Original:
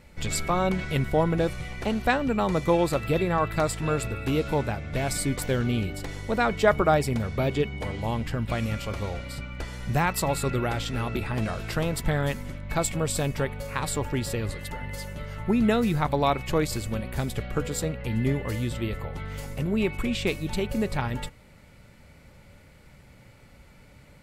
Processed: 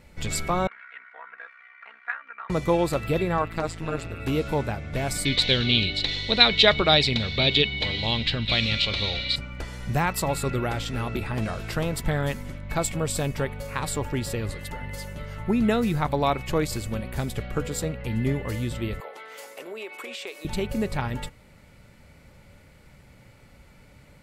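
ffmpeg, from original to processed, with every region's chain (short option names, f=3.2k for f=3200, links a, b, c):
-filter_complex "[0:a]asettb=1/sr,asplit=3[a][b][c];[a]atrim=end=0.674[d];[b]atrim=start=0.67:end=2.5,asetpts=PTS-STARTPTS,afade=t=in:d=0.004:c=qsin,afade=t=out:st=1.826:d=0.004:c=qsin,tremolo=f=63:d=0.919,asuperpass=centerf=1600:order=4:qfactor=1.9,aecho=1:1:4.3:0.63,atrim=end_sample=80703[e];[c]atrim=start=2.496[f];[d][e]acrossfade=d=0.004:c1=hsin:c2=qsin[g];[g][f]acrossfade=d=0.004:c1=qsin:c2=hsin,asettb=1/sr,asplit=3[h][i][j];[h]atrim=end=3.424[k];[i]atrim=start=3.42:end=4.2,asetpts=PTS-STARTPTS,afade=t=in:d=0.004:c=qsin,afade=t=out:st=0.776:d=0.004:c=qsin,acrossover=split=7400[l][m];[m]acompressor=threshold=-52dB:ratio=4:attack=1:release=60[n];[l][n]amix=inputs=2:normalize=0,tremolo=f=170:d=0.857[o];[j]atrim=start=4.196[p];[k][o]acrossfade=d=0.004:c1=hsin:c2=qsin[q];[q][p]acrossfade=d=0.004:c1=qsin:c2=hsin,asettb=1/sr,asplit=3[r][s][t];[r]atrim=end=5.254[u];[s]atrim=start=5.25:end=9.36,asetpts=PTS-STARTPTS,afade=t=in:d=0.004:c=qsin,afade=t=out:st=4.106:d=0.004:c=qsin,lowpass=f=3.9k:t=q:w=9,highshelf=f=1.8k:t=q:w=1.5:g=7[v];[t]atrim=start=9.356[w];[u][v]acrossfade=d=0.004:c1=hsin:c2=qsin[x];[x][w]acrossfade=d=0.004:c1=qsin:c2=hsin,asettb=1/sr,asplit=3[y][z][aa];[y]atrim=end=19.004[ab];[z]atrim=start=19:end=20.45,asetpts=PTS-STARTPTS,afade=t=in:d=0.004:c=qsin,afade=t=out:st=1.446:d=0.004:c=qsin,highpass=f=410:w=0.5412,highpass=f=410:w=1.3066,acompressor=threshold=-32dB:ratio=6:attack=3.2:release=140:knee=1:detection=peak[ac];[aa]atrim=start=20.446[ad];[ab][ac]acrossfade=d=0.004:c1=hsin:c2=qsin[ae];[ae][ad]acrossfade=d=0.004:c1=qsin:c2=hsin"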